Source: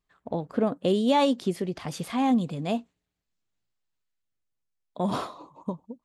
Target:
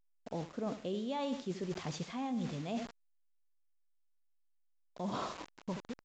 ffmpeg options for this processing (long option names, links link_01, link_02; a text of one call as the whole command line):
ffmpeg -i in.wav -af "aecho=1:1:80|160|240:0.211|0.0676|0.0216,acrusher=bits=6:mix=0:aa=0.000001,areverse,acompressor=threshold=-32dB:ratio=6,areverse,volume=-3dB" -ar 16000 -c:a pcm_alaw out.wav